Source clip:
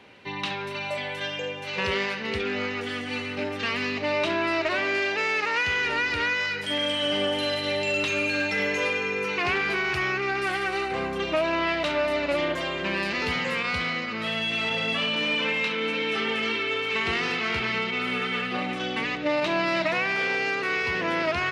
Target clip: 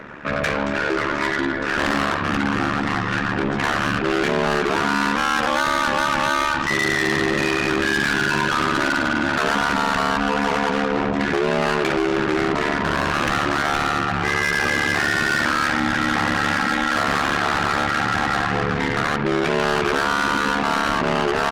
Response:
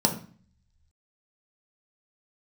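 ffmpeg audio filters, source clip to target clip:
-af "lowshelf=frequency=220:gain=-5.5,aecho=1:1:81:0.075,asetrate=26990,aresample=44100,atempo=1.63392,apsyclip=20.5dB,acontrast=33,asoftclip=type=tanh:threshold=-7dB,aeval=exprs='val(0)*sin(2*PI*36*n/s)':channel_layout=same,volume=-8dB"

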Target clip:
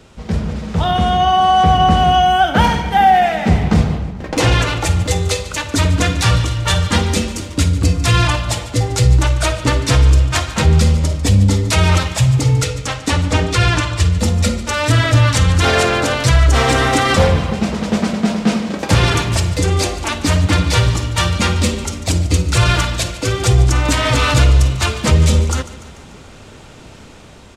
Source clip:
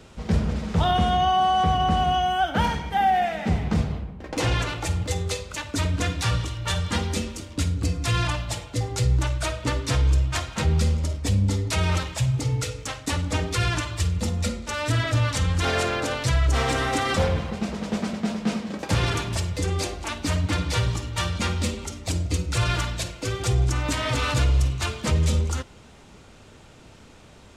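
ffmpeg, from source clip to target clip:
ffmpeg -i in.wav -filter_complex "[0:a]asettb=1/sr,asplit=3[link_01][link_02][link_03];[link_01]atrim=end=12.644[link_04];[link_02]atrim=start=12.64:end=14.17,asetpts=PTS-STARTPTS,afade=type=in:duration=0.004:curve=qsin,afade=type=out:start_time=1.526:duration=0.004:curve=qsin,highshelf=frequency=11000:gain=-12[link_05];[link_03]atrim=start=14.166[link_06];[link_04][link_05]acrossfade=duration=0.004:curve1=hsin:curve2=qsin[link_07];[link_07][link_06]acrossfade=duration=0.004:curve1=qsin:curve2=hsin,aecho=1:1:146|292|438|584|730:0.15|0.0853|0.0486|0.0277|0.0158,dynaudnorm=framelen=360:gausssize=7:maxgain=7.5dB,volume=3dB" out.wav

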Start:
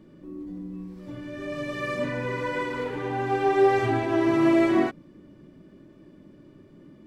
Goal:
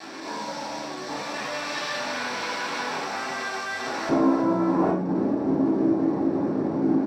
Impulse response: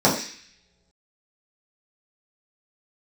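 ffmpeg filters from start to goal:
-filter_complex "[0:a]aecho=1:1:2.8:0.94,acompressor=threshold=-31dB:ratio=3,alimiter=level_in=5.5dB:limit=-24dB:level=0:latency=1:release=11,volume=-5.5dB,acrusher=bits=7:mix=0:aa=0.000001,aeval=exprs='0.015*(abs(mod(val(0)/0.015+3,4)-2)-1)':channel_layout=same,asetnsamples=nb_out_samples=441:pad=0,asendcmd='4.09 bandpass f 440',bandpass=frequency=3000:width_type=q:width=0.8:csg=0,asplit=4[link_01][link_02][link_03][link_04];[link_02]adelay=328,afreqshift=-150,volume=-13.5dB[link_05];[link_03]adelay=656,afreqshift=-300,volume=-23.1dB[link_06];[link_04]adelay=984,afreqshift=-450,volume=-32.8dB[link_07];[link_01][link_05][link_06][link_07]amix=inputs=4:normalize=0[link_08];[1:a]atrim=start_sample=2205,atrim=end_sample=6615[link_09];[link_08][link_09]afir=irnorm=-1:irlink=0"

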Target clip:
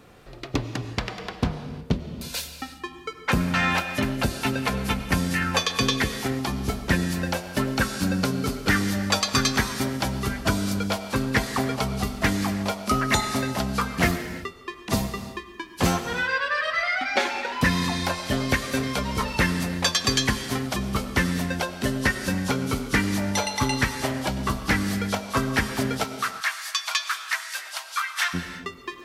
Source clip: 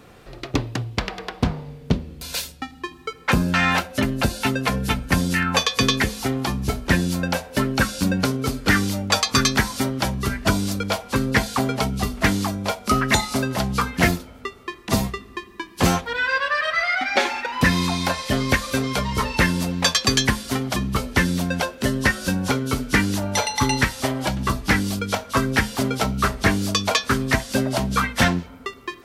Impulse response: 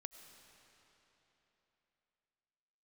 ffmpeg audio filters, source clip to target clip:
-filter_complex "[0:a]asplit=3[link_01][link_02][link_03];[link_01]afade=type=out:start_time=26.03:duration=0.02[link_04];[link_02]highpass=frequency=1100:width=0.5412,highpass=frequency=1100:width=1.3066,afade=type=in:start_time=26.03:duration=0.02,afade=type=out:start_time=28.33:duration=0.02[link_05];[link_03]afade=type=in:start_time=28.33:duration=0.02[link_06];[link_04][link_05][link_06]amix=inputs=3:normalize=0[link_07];[1:a]atrim=start_sample=2205,afade=type=out:start_time=0.42:duration=0.01,atrim=end_sample=18963[link_08];[link_07][link_08]afir=irnorm=-1:irlink=0,volume=2dB"

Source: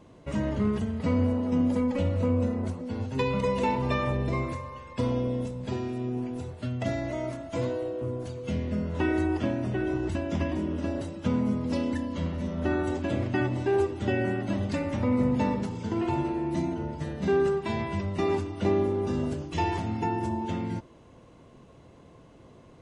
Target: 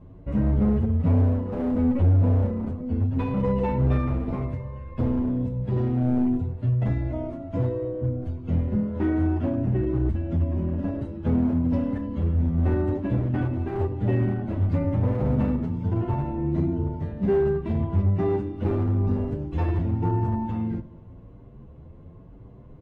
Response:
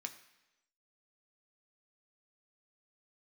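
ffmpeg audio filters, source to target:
-filter_complex "[0:a]aemphasis=mode=reproduction:type=riaa,asplit=3[link_01][link_02][link_03];[link_01]afade=type=out:start_time=10.09:duration=0.02[link_04];[link_02]acompressor=threshold=-19dB:ratio=4,afade=type=in:start_time=10.09:duration=0.02,afade=type=out:start_time=10.57:duration=0.02[link_05];[link_03]afade=type=in:start_time=10.57:duration=0.02[link_06];[link_04][link_05][link_06]amix=inputs=3:normalize=0,aecho=1:1:100|200|300|400|500:0.1|0.057|0.0325|0.0185|0.0106,asettb=1/sr,asplit=3[link_07][link_08][link_09];[link_07]atrim=end=5.764[link_10];[link_08]atrim=start=5.76:end=6.37,asetpts=PTS-STARTPTS,afade=type=in:duration=0.004:curve=qsin,afade=type=out:start_time=0.606:duration=0.004:curve=qsin,acontrast=33[link_11];[link_09]atrim=start=6.366[link_12];[link_10][link_11]acrossfade=duration=0.004:curve1=hsin:curve2=qsin[link_13];[link_13][link_12]acrossfade=duration=0.004:curve1=qsin:curve2=hsin,asettb=1/sr,asplit=3[link_14][link_15][link_16];[link_14]atrim=end=8.744[link_17];[link_15]atrim=start=8.74:end=9.58,asetpts=PTS-STARTPTS,afade=type=in:duration=0.004:curve=qsin,afade=type=out:start_time=0.836:duration=0.004:curve=qsin,highpass=frequency=91:width=0.5412,highpass=frequency=91:width=1.3066[link_18];[link_16]atrim=start=9.576[link_19];[link_17][link_18]acrossfade=duration=0.004:curve1=hsin:curve2=qsin[link_20];[link_20][link_19]acrossfade=duration=0.004:curve1=qsin:curve2=hsin,asoftclip=type=hard:threshold=-15dB,equalizer=frequency=6200:width_type=o:width=2:gain=-7.5,asplit=2[link_21][link_22];[link_22]adelay=8.8,afreqshift=0.95[link_23];[link_21][link_23]amix=inputs=2:normalize=1"

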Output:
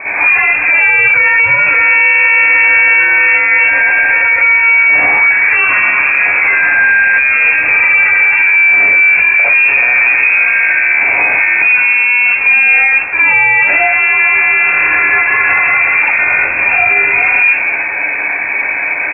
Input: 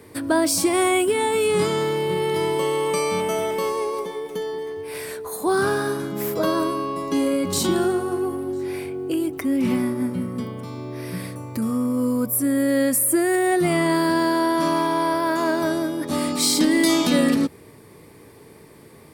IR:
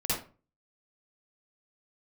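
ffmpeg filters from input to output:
-filter_complex "[0:a]asettb=1/sr,asplit=3[link_01][link_02][link_03];[link_01]atrim=end=0.574[link_04];[link_02]atrim=start=0.57:end=1.06,asetpts=PTS-STARTPTS,afade=type=in:duration=0.004:curve=qsin,afade=type=out:start_time=0.486:duration=0.004:curve=qsin,highshelf=frequency=2000:gain=-9[link_05];[link_03]atrim=start=1.056[link_06];[link_04][link_05]acrossfade=duration=0.004:curve1=hsin:curve2=qsin[link_07];[link_07][link_06]acrossfade=duration=0.004:curve1=qsin:curve2=hsin,asplit=2[link_08][link_09];[link_09]highpass=frequency=720:poles=1,volume=35dB,asoftclip=type=tanh:threshold=-8dB[link_10];[link_08][link_10]amix=inputs=2:normalize=0,lowpass=frequency=2100:poles=1,volume=-6dB,aecho=1:1:207:0.141[link_11];[1:a]atrim=start_sample=2205,atrim=end_sample=4410[link_12];[link_11][link_12]afir=irnorm=-1:irlink=0,lowpass=frequency=2300:width_type=q:width=0.5098,lowpass=frequency=2300:width_type=q:width=0.6013,lowpass=frequency=2300:width_type=q:width=0.9,lowpass=frequency=2300:width_type=q:width=2.563,afreqshift=-2700,alimiter=level_in=3dB:limit=-1dB:release=50:level=0:latency=1,volume=-1dB"

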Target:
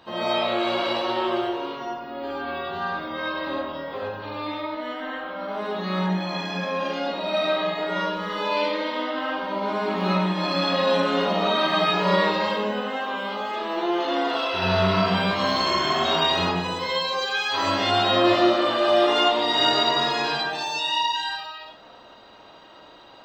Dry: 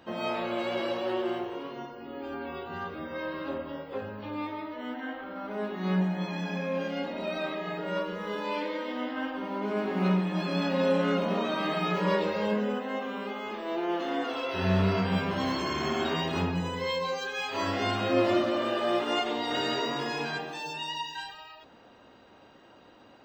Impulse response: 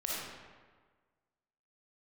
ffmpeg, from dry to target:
-filter_complex "[0:a]equalizer=frequency=250:width_type=o:width=0.67:gain=-4,equalizer=frequency=1000:width_type=o:width=0.67:gain=6,equalizer=frequency=4000:width_type=o:width=0.67:gain=9[link_01];[1:a]atrim=start_sample=2205,atrim=end_sample=6174[link_02];[link_01][link_02]afir=irnorm=-1:irlink=0,volume=2.5dB"

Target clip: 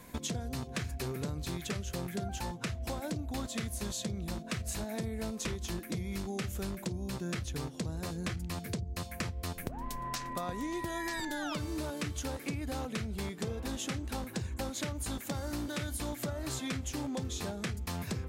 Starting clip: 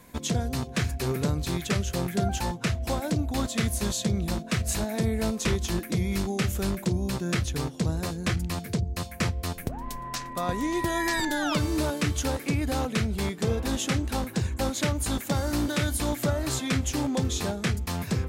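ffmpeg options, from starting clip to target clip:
ffmpeg -i in.wav -af "acompressor=threshold=-34dB:ratio=6" out.wav

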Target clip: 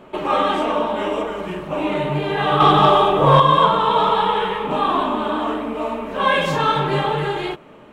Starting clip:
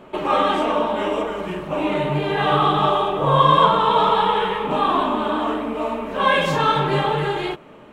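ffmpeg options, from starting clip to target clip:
ffmpeg -i in.wav -filter_complex "[0:a]asettb=1/sr,asplit=3[link_01][link_02][link_03];[link_01]atrim=end=2.604[link_04];[link_02]atrim=start=2.6:end=3.4,asetpts=PTS-STARTPTS,afade=type=in:duration=0.004:curve=qsin,afade=type=out:start_time=0.796:duration=0.004:curve=qsin,acontrast=50[link_05];[link_03]atrim=start=3.396[link_06];[link_04][link_05]acrossfade=duration=0.004:curve1=hsin:curve2=qsin[link_07];[link_07][link_06]acrossfade=duration=0.004:curve1=qsin:curve2=hsin" out.wav

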